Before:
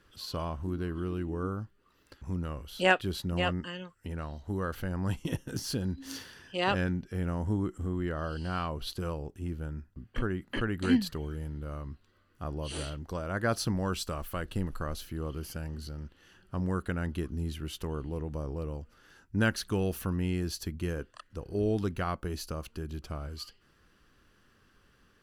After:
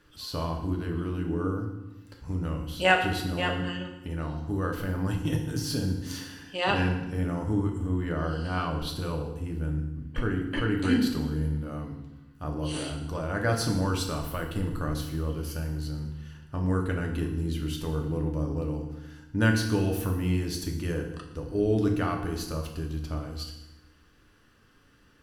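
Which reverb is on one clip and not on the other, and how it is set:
feedback delay network reverb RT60 0.96 s, low-frequency decay 1.5×, high-frequency decay 0.9×, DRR 1.5 dB
level +1 dB

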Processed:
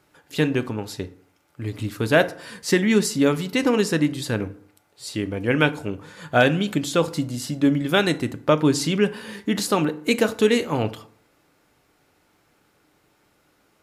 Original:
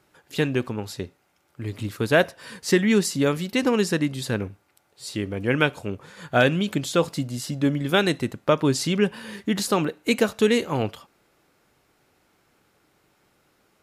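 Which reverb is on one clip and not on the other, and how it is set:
feedback delay network reverb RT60 0.57 s, low-frequency decay 1.05×, high-frequency decay 0.55×, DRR 11.5 dB
level +1 dB

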